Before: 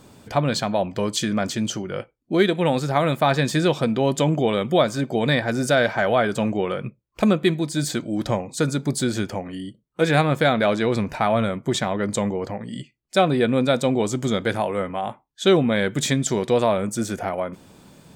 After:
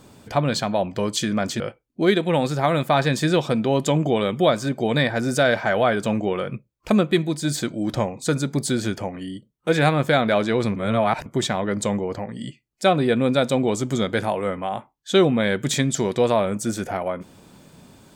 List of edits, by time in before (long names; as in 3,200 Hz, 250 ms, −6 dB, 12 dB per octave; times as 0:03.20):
0:01.60–0:01.92: remove
0:11.08–0:11.58: reverse